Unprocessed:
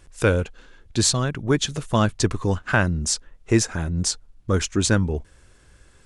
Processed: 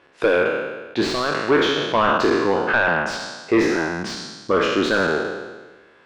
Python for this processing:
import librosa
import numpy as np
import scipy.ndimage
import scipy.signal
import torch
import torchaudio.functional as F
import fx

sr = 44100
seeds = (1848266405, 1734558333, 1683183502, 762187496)

y = fx.spec_trails(x, sr, decay_s=1.31)
y = scipy.signal.sosfilt(scipy.signal.butter(2, 380.0, 'highpass', fs=sr, output='sos'), y)
y = np.clip(y, -10.0 ** (-17.5 / 20.0), 10.0 ** (-17.5 / 20.0))
y = fx.air_absorb(y, sr, metres=350.0)
y = y * librosa.db_to_amplitude(7.5)